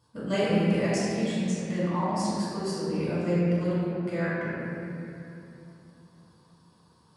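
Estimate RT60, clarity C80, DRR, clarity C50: 2.8 s, −2.5 dB, −11.0 dB, −4.5 dB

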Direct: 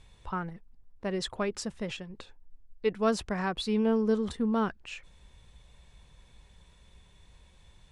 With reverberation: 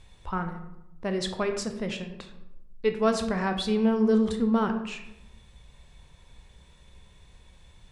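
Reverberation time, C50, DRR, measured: 0.90 s, 9.0 dB, 6.0 dB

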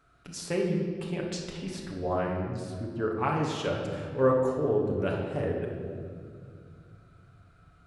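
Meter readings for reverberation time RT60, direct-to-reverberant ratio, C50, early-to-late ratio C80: 2.2 s, −1.5 dB, 2.5 dB, 4.5 dB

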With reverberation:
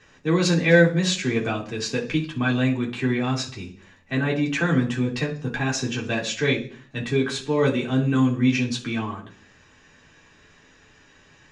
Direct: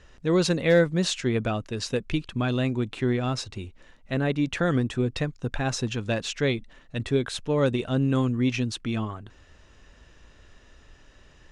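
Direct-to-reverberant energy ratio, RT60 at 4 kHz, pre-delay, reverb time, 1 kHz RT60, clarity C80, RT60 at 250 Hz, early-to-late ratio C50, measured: −4.5 dB, 0.55 s, 3 ms, 0.45 s, 0.40 s, 17.0 dB, 0.60 s, 12.0 dB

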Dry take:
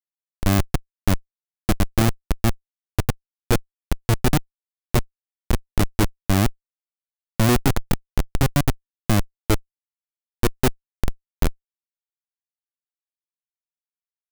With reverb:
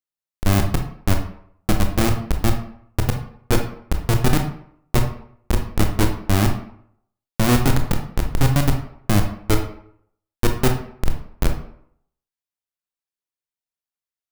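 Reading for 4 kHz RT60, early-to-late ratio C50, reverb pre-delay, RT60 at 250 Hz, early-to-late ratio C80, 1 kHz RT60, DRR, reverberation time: 0.40 s, 7.0 dB, 20 ms, 0.60 s, 11.0 dB, 0.65 s, 3.5 dB, 0.65 s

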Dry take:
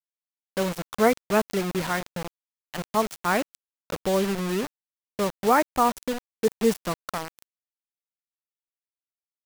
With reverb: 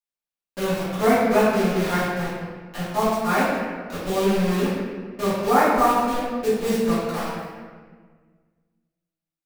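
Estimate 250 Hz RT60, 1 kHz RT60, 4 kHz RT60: 2.1 s, 1.5 s, 1.0 s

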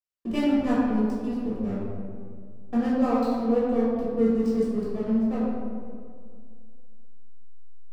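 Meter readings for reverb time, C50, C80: 2.0 s, −2.0 dB, 0.0 dB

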